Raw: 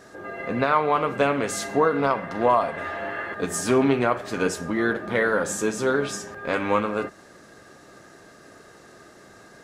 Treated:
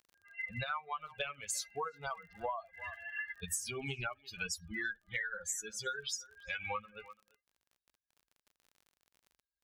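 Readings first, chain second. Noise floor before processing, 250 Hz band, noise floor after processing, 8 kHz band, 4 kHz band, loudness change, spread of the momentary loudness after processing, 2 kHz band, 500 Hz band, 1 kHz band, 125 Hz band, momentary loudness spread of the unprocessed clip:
-50 dBFS, -26.5 dB, under -85 dBFS, -7.0 dB, -6.5 dB, -15.5 dB, 6 LU, -11.5 dB, -23.5 dB, -18.0 dB, -15.5 dB, 9 LU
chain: per-bin expansion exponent 3; passive tone stack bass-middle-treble 10-0-10; speakerphone echo 0.34 s, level -26 dB; crackle 40/s -62 dBFS; compressor 10:1, threshold -47 dBFS, peak gain reduction 19 dB; gain +11.5 dB

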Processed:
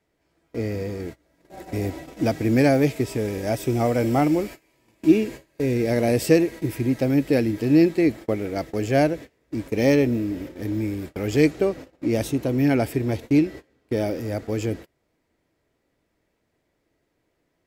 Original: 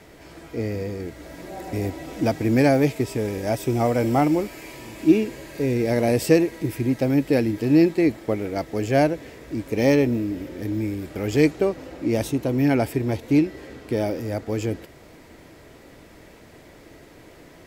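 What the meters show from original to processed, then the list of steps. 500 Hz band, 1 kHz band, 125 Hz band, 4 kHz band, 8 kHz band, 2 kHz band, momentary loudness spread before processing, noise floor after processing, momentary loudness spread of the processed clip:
-0.5 dB, -2.0 dB, 0.0 dB, 0.0 dB, 0.0 dB, -0.5 dB, 13 LU, -73 dBFS, 11 LU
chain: dynamic EQ 930 Hz, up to -4 dB, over -40 dBFS, Q 2.7; gate -34 dBFS, range -25 dB

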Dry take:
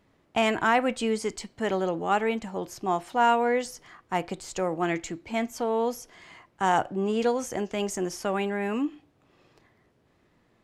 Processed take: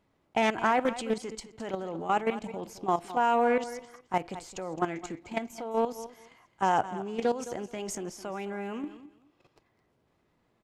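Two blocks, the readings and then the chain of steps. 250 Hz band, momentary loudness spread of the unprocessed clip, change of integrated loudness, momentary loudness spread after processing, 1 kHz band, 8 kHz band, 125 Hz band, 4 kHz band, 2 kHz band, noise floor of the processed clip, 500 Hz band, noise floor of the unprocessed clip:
-4.5 dB, 9 LU, -3.5 dB, 13 LU, -2.0 dB, -5.0 dB, -5.0 dB, -6.0 dB, -4.5 dB, -72 dBFS, -3.5 dB, -66 dBFS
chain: notch 1800 Hz, Q 16; spectral delete 2.34–2.6, 980–2100 Hz; bell 850 Hz +2.5 dB 0.89 oct; level quantiser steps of 12 dB; feedback echo 0.214 s, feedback 18%, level -14.5 dB; Doppler distortion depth 0.23 ms

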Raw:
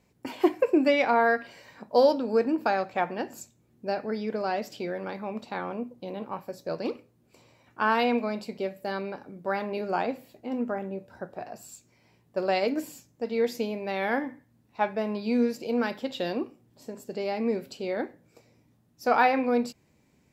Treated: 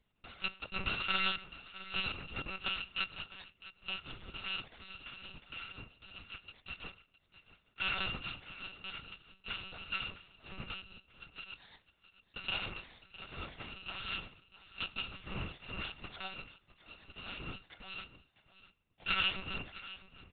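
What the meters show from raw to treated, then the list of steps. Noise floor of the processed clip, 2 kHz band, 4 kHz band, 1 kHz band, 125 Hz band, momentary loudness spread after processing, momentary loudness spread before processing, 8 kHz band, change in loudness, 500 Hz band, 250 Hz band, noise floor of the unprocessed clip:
-75 dBFS, -6.0 dB, +3.5 dB, -17.0 dB, -5.5 dB, 18 LU, 17 LU, under -30 dB, -11.5 dB, -28.0 dB, -23.0 dB, -66 dBFS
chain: FFT order left unsorted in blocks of 256 samples; echo 0.659 s -16 dB; monotone LPC vocoder at 8 kHz 190 Hz; gain -3 dB

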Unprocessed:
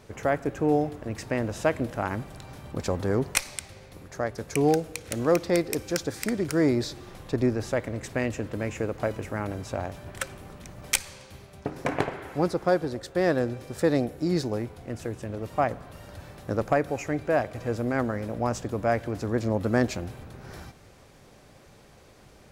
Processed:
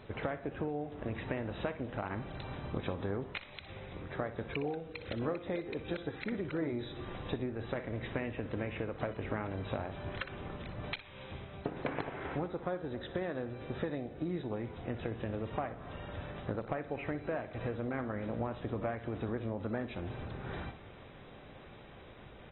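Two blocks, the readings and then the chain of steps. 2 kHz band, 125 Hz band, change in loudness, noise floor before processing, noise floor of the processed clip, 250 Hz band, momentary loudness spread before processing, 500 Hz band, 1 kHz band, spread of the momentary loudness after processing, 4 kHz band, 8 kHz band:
-9.0 dB, -8.0 dB, -11.0 dB, -53 dBFS, -52 dBFS, -10.0 dB, 17 LU, -11.0 dB, -10.5 dB, 9 LU, -10.0 dB, under -40 dB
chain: high shelf 4000 Hz +2 dB; compressor 20:1, threshold -33 dBFS, peak gain reduction 18.5 dB; feedback echo 61 ms, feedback 30%, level -13.5 dB; AAC 16 kbps 24000 Hz

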